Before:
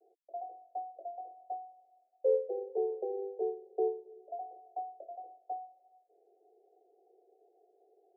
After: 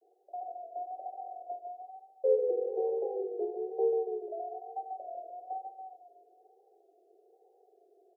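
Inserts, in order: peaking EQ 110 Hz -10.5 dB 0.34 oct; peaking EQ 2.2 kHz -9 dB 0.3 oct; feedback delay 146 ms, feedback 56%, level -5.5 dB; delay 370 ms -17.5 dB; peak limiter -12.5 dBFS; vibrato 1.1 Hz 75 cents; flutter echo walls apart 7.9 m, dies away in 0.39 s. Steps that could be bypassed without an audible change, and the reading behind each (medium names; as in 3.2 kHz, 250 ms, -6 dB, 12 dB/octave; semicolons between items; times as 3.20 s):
peaking EQ 110 Hz: input has nothing below 320 Hz; peaking EQ 2.2 kHz: input has nothing above 810 Hz; peak limiter -12.5 dBFS: peak at its input -18.5 dBFS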